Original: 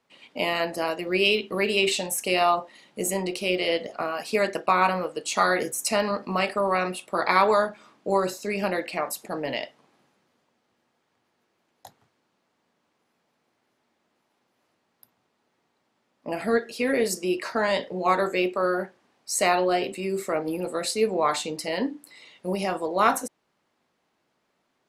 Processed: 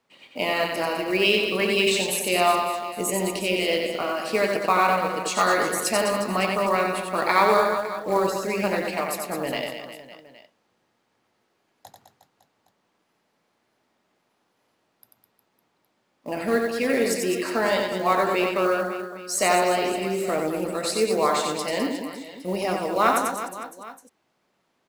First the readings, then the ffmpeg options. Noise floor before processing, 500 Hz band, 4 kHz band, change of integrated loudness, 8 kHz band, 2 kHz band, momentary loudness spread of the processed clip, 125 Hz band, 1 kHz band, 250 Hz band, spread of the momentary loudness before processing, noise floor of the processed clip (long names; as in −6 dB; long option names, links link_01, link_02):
−74 dBFS, +2.0 dB, +2.0 dB, +2.0 dB, +2.5 dB, +2.0 dB, 11 LU, +2.0 dB, +2.0 dB, +2.0 dB, 9 LU, −72 dBFS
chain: -af "aecho=1:1:90|207|359.1|556.8|813.9:0.631|0.398|0.251|0.158|0.1,acrusher=bits=6:mode=log:mix=0:aa=0.000001"